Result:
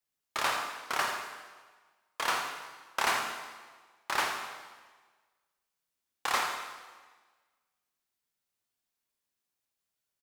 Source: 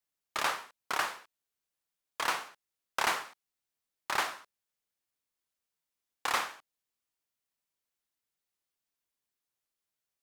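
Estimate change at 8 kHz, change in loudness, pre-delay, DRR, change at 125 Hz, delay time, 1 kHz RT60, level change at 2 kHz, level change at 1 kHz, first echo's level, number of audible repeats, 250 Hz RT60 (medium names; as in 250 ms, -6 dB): +2.0 dB, +1.0 dB, 6 ms, 2.5 dB, +2.5 dB, 82 ms, 1.4 s, +2.0 dB, +2.0 dB, -11.0 dB, 1, 1.4 s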